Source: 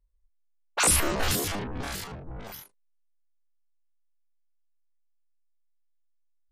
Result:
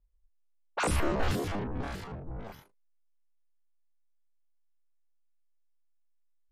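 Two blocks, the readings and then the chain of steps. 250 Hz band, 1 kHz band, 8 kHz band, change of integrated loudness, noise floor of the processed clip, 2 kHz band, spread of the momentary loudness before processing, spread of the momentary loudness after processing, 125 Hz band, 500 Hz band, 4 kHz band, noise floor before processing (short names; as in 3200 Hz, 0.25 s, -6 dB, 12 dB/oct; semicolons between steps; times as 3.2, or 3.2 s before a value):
-0.5 dB, -2.5 dB, -17.0 dB, -7.5 dB, -68 dBFS, -6.0 dB, 20 LU, 14 LU, 0.0 dB, -1.0 dB, -11.0 dB, -68 dBFS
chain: LPF 1100 Hz 6 dB/oct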